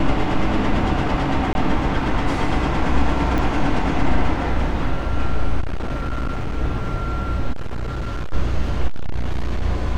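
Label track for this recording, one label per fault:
1.530000	1.550000	drop-out 21 ms
3.380000	3.380000	click −11 dBFS
5.600000	6.580000	clipping −19.5 dBFS
7.520000	8.340000	clipping −21 dBFS
8.870000	9.620000	clipping −16 dBFS

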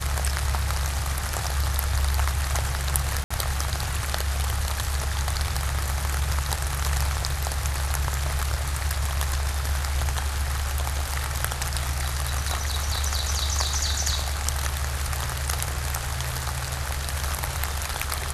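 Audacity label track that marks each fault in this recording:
3.240000	3.310000	drop-out 65 ms

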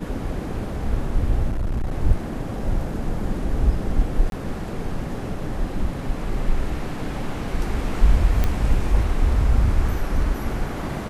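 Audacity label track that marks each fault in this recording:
1.500000	1.940000	clipping −20 dBFS
4.300000	4.320000	drop-out 22 ms
8.440000	8.440000	click −9 dBFS

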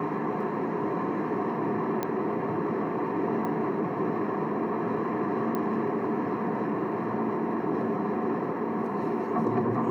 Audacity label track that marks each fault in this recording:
2.030000	2.030000	click −15 dBFS
3.450000	3.450000	click −22 dBFS
5.550000	5.550000	click −18 dBFS

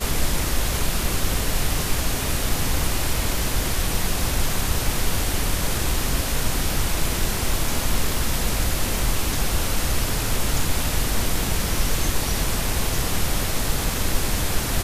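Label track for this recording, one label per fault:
8.990000	8.990000	click

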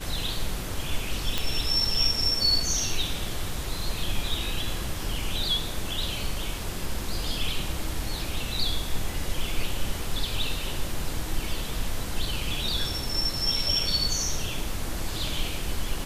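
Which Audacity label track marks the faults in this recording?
1.380000	1.380000	click

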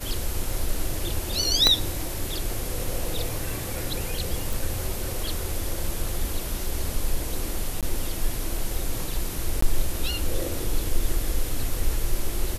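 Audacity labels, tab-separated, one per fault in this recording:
1.670000	1.670000	click −3 dBFS
4.530000	4.530000	click
7.810000	7.830000	drop-out 17 ms
9.610000	9.620000	drop-out 14 ms

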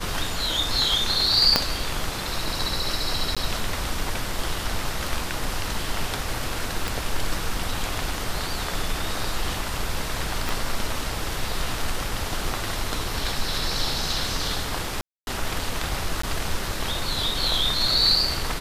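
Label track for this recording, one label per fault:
1.560000	1.560000	click −1 dBFS
3.350000	3.370000	drop-out 16 ms
6.880000	6.880000	click
10.490000	10.490000	click
15.010000	15.270000	drop-out 261 ms
16.220000	16.230000	drop-out 14 ms

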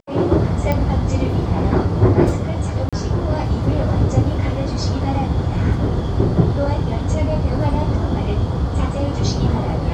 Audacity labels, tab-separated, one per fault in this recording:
0.720000	0.720000	click −8 dBFS
2.890000	2.930000	drop-out 36 ms

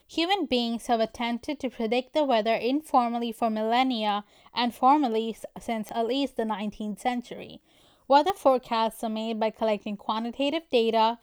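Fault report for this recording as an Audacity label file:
5.890000	5.890000	click −19 dBFS
8.300000	8.300000	click −14 dBFS

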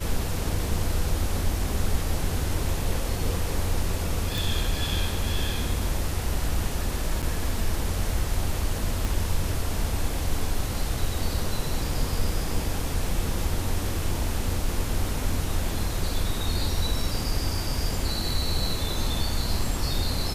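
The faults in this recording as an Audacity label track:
4.380000	4.380000	click
7.220000	7.230000	drop-out 7.7 ms
9.050000	9.050000	click

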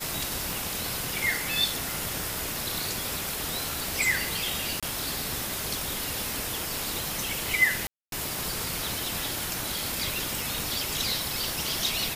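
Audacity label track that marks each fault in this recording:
0.530000	0.530000	click
1.910000	1.910000	click
4.800000	4.830000	drop-out 26 ms
7.870000	8.120000	drop-out 252 ms
10.400000	10.400000	click

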